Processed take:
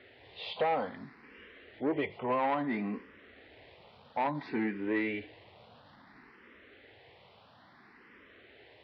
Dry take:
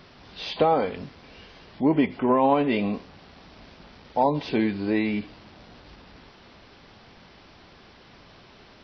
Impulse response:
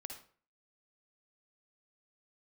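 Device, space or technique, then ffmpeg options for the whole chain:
barber-pole phaser into a guitar amplifier: -filter_complex "[0:a]asplit=2[a][b];[b]afreqshift=0.59[c];[a][c]amix=inputs=2:normalize=1,asoftclip=type=tanh:threshold=-20.5dB,highpass=98,equalizer=f=170:t=q:w=4:g=-8,equalizer=f=470:t=q:w=4:g=4,equalizer=f=1.9k:t=q:w=4:g=8,lowpass=f=3.8k:w=0.5412,lowpass=f=3.8k:w=1.3066,volume=-4.5dB"

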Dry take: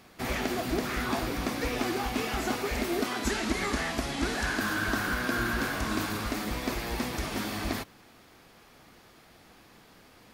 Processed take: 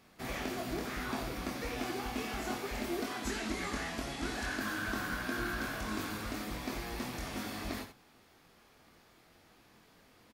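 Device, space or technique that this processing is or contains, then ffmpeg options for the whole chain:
slapback doubling: -filter_complex "[0:a]asplit=3[a][b][c];[b]adelay=23,volume=-5dB[d];[c]adelay=88,volume=-9dB[e];[a][d][e]amix=inputs=3:normalize=0,volume=-8.5dB"

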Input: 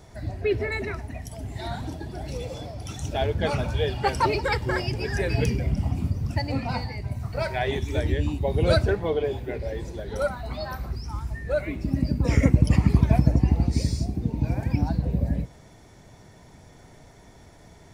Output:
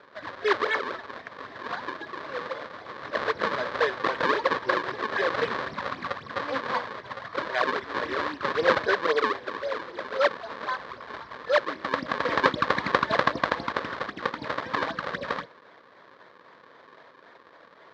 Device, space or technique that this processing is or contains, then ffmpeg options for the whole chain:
circuit-bent sampling toy: -af "acrusher=samples=38:mix=1:aa=0.000001:lfo=1:lforange=60.8:lforate=3.8,highpass=490,equalizer=f=520:t=q:w=4:g=5,equalizer=f=770:t=q:w=4:g=-5,equalizer=f=1.1k:t=q:w=4:g=10,equalizer=f=1.7k:t=q:w=4:g=8,equalizer=f=2.7k:t=q:w=4:g=-6,equalizer=f=4k:t=q:w=4:g=3,lowpass=f=4.2k:w=0.5412,lowpass=f=4.2k:w=1.3066,volume=2dB"

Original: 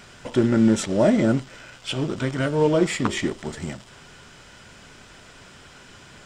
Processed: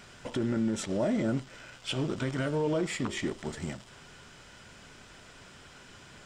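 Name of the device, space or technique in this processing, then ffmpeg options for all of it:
stacked limiters: -af "alimiter=limit=-12dB:level=0:latency=1:release=328,alimiter=limit=-16dB:level=0:latency=1:release=20,volume=-5dB"

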